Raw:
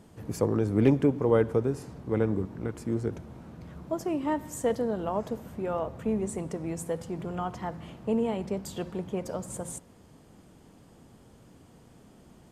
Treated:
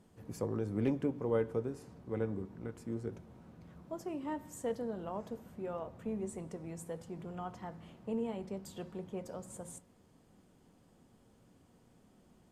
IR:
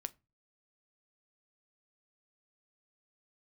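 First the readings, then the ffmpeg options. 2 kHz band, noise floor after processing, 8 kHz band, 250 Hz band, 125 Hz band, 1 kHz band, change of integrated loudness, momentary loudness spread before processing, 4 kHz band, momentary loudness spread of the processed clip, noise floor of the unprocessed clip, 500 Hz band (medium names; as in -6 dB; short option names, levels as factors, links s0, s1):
-10.0 dB, -66 dBFS, -10.0 dB, -9.5 dB, -10.5 dB, -10.0 dB, -10.0 dB, 14 LU, -10.0 dB, 14 LU, -56 dBFS, -9.5 dB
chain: -filter_complex "[1:a]atrim=start_sample=2205,asetrate=66150,aresample=44100[s0];[0:a][s0]afir=irnorm=-1:irlink=0,volume=0.631"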